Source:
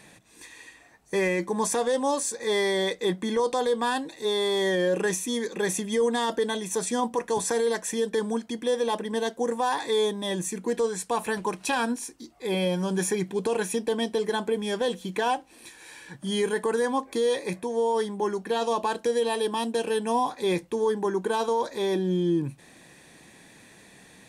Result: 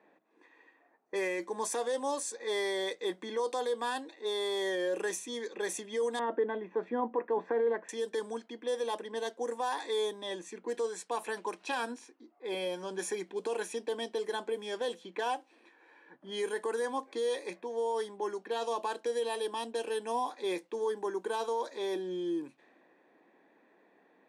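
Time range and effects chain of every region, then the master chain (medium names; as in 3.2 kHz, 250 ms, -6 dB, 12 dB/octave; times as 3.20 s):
6.19–7.89 s: low-pass 2.1 kHz 24 dB/octave + bass shelf 410 Hz +8.5 dB
whole clip: high-pass 280 Hz 24 dB/octave; level-controlled noise filter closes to 1.1 kHz, open at -23 dBFS; trim -7.5 dB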